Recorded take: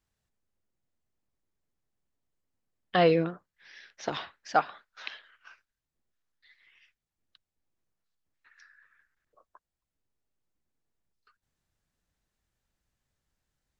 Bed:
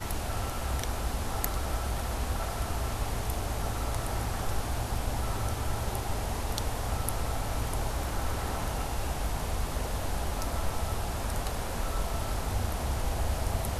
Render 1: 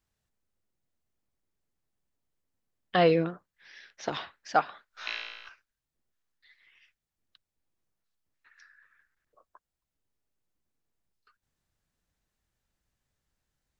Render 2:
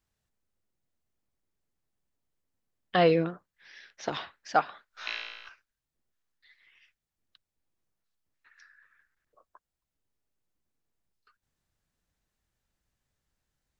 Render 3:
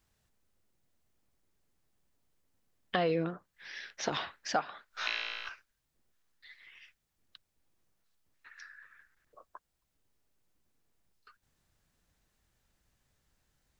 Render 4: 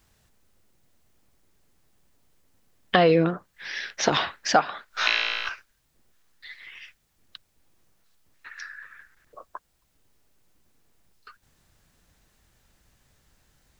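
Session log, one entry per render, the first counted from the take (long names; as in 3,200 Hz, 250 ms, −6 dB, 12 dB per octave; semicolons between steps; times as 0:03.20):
0:04.89–0:05.49: flutter between parallel walls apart 3 metres, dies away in 1.1 s
no processing that can be heard
in parallel at +1 dB: brickwall limiter −19.5 dBFS, peak gain reduction 9 dB; on the sum: downward compressor 2.5 to 1, threshold −32 dBFS, peak gain reduction 12 dB
level +11.5 dB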